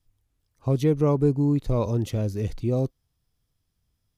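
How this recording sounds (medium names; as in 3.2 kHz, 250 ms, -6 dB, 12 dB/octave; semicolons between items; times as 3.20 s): noise floor -76 dBFS; spectral tilt -8.0 dB/octave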